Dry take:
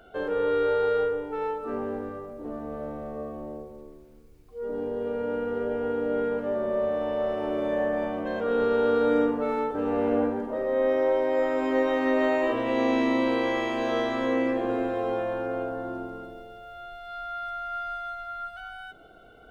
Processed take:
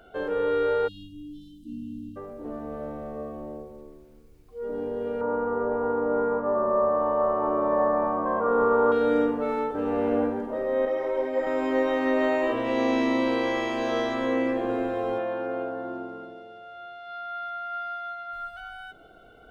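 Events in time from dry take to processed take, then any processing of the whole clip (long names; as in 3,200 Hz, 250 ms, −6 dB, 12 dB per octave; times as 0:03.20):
0:00.88–0:02.17: time-frequency box erased 330–2,700 Hz
0:05.21–0:08.92: low-pass with resonance 1,100 Hz, resonance Q 6.8
0:10.85–0:11.47: string-ensemble chorus
0:12.64–0:14.14: parametric band 5,400 Hz +5.5 dB 0.53 octaves
0:15.18–0:18.33: band-pass filter 160–4,900 Hz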